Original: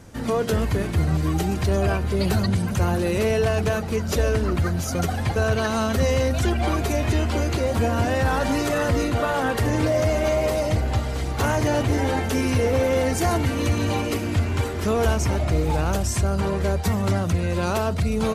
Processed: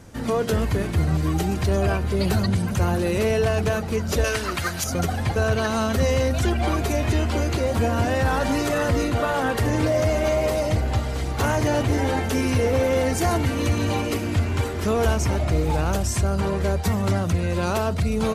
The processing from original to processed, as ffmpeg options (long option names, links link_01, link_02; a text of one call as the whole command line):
ffmpeg -i in.wav -filter_complex "[0:a]asettb=1/sr,asplit=3[link_01][link_02][link_03];[link_01]atrim=end=4.244[link_04];[link_02]atrim=start=4.24:end=4.84,asetpts=PTS-STARTPTS,afade=type=in:duration=0.004:curve=qsin,afade=type=out:start_time=0.596:duration=0.004:curve=qsin,tiltshelf=frequency=720:gain=-9.5[link_05];[link_03]atrim=start=4.836[link_06];[link_04][link_05]acrossfade=duration=0.004:curve1=hsin:curve2=qsin[link_07];[link_07][link_06]acrossfade=duration=0.004:curve1=qsin:curve2=hsin" out.wav